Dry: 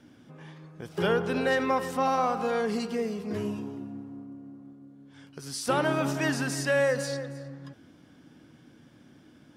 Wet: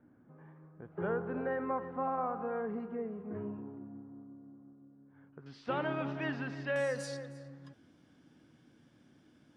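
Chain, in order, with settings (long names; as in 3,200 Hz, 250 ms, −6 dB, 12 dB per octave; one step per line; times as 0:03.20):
low-pass filter 1,600 Hz 24 dB per octave, from 0:05.46 3,300 Hz, from 0:06.76 11,000 Hz
level −8.5 dB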